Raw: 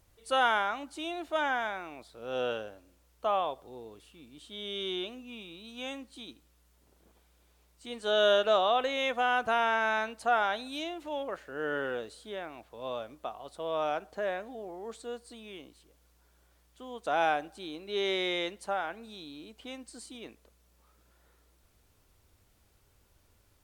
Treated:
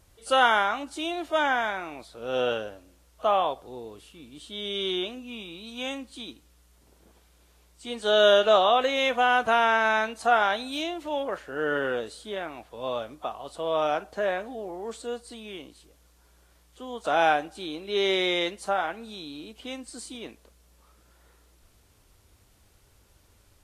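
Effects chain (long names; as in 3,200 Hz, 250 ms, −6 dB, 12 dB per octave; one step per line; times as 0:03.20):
level +6 dB
Ogg Vorbis 32 kbit/s 44,100 Hz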